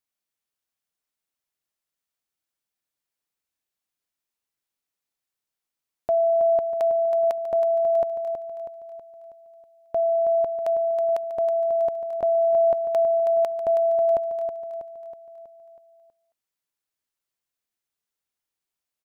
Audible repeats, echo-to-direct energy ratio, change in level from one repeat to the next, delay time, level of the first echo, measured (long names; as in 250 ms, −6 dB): 5, −6.0 dB, −6.0 dB, 322 ms, −7.5 dB